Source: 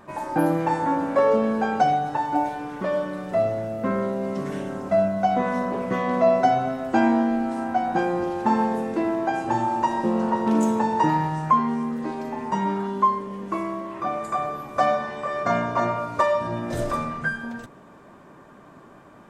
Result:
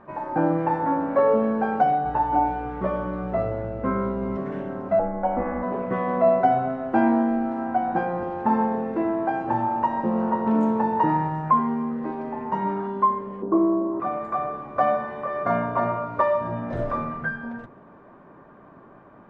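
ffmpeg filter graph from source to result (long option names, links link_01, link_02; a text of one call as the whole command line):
ffmpeg -i in.wav -filter_complex "[0:a]asettb=1/sr,asplit=3[link_01][link_02][link_03];[link_01]atrim=end=2.044[link_04];[link_02]atrim=start=2.04:end=4.37,asetpts=PTS-STARTPTS,afade=type=in:duration=0.004:curve=qsin,afade=type=out:start_time=2.326:duration=0.004:curve=qsin,bandreject=frequency=1800:width=24,aeval=exprs='val(0)+0.00891*(sin(2*PI*60*n/s)+sin(2*PI*2*60*n/s)/2+sin(2*PI*3*60*n/s)/3+sin(2*PI*4*60*n/s)/4+sin(2*PI*5*60*n/s)/5)':channel_layout=same,asplit=2[link_05][link_06];[link_06]adelay=16,volume=-3.5dB[link_07];[link_05][link_07]amix=inputs=2:normalize=0,atrim=end_sample=102753[link_08];[link_03]atrim=start=4.366[link_09];[link_04][link_08]acrossfade=duration=0.004:curve1=hsin:curve2=qsin[link_10];[link_10][link_09]acrossfade=duration=0.004:curve1=qsin:curve2=hsin,asettb=1/sr,asplit=3[link_11][link_12][link_13];[link_11]atrim=end=4.994[link_14];[link_12]atrim=start=4.99:end=5.63,asetpts=PTS-STARTPTS,afade=type=in:duration=0.004:curve=qsin,afade=type=out:start_time=0.636:duration=0.004:curve=qsin,tremolo=f=180:d=0.75,lowpass=2100,aecho=1:1:3.6:0.87,atrim=end_sample=28224[link_15];[link_13]atrim=start=5.626[link_16];[link_14][link_15]acrossfade=duration=0.004:curve1=hsin:curve2=qsin[link_17];[link_17][link_16]acrossfade=duration=0.004:curve1=qsin:curve2=hsin,asettb=1/sr,asplit=3[link_18][link_19][link_20];[link_18]atrim=end=13.424[link_21];[link_19]atrim=start=13.42:end=14,asetpts=PTS-STARTPTS,afade=type=in:duration=0.004:curve=qsin,afade=type=out:start_time=0.576:duration=0.004:curve=qsin,lowpass=frequency=1200:width=0.5412,lowpass=frequency=1200:width=1.3066,equalizer=frequency=340:width_type=o:width=1.1:gain=12[link_22];[link_20]atrim=start=13.996[link_23];[link_21][link_22]acrossfade=duration=0.004:curve1=hsin:curve2=qsin[link_24];[link_24][link_23]acrossfade=duration=0.004:curve1=qsin:curve2=hsin,lowpass=1700,bandreject=frequency=50:width_type=h:width=6,bandreject=frequency=100:width_type=h:width=6,bandreject=frequency=150:width_type=h:width=6,bandreject=frequency=200:width_type=h:width=6,bandreject=frequency=250:width_type=h:width=6,bandreject=frequency=300:width_type=h:width=6,bandreject=frequency=350:width_type=h:width=6" out.wav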